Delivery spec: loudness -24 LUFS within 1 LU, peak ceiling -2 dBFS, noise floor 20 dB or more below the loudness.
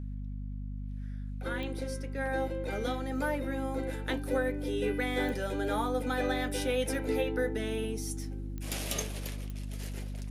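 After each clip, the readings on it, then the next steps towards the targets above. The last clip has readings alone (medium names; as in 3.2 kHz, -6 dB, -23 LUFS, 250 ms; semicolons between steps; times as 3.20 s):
clicks found 4; hum 50 Hz; highest harmonic 250 Hz; hum level -35 dBFS; loudness -34.0 LUFS; peak level -17.5 dBFS; loudness target -24.0 LUFS
-> de-click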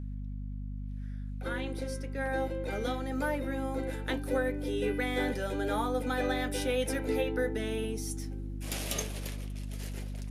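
clicks found 0; hum 50 Hz; highest harmonic 250 Hz; hum level -35 dBFS
-> de-hum 50 Hz, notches 5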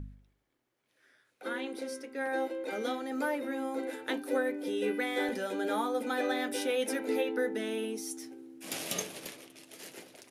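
hum not found; loudness -34.0 LUFS; peak level -17.5 dBFS; loudness target -24.0 LUFS
-> trim +10 dB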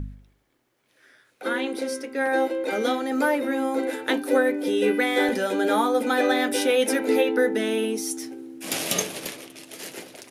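loudness -24.0 LUFS; peak level -7.5 dBFS; noise floor -68 dBFS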